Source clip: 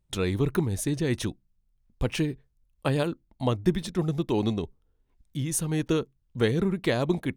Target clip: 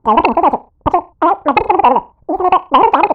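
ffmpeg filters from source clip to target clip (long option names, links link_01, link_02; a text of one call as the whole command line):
ffmpeg -i in.wav -filter_complex "[0:a]lowpass=frequency=400:width_type=q:width=4.6,aeval=exprs='0.75*sin(PI/2*2.24*val(0)/0.75)':channel_layout=same,asplit=2[link_01][link_02];[link_02]aecho=0:1:78|156|234|312:0.106|0.0519|0.0254|0.0125[link_03];[link_01][link_03]amix=inputs=2:normalize=0,asetrate=103194,aresample=44100" out.wav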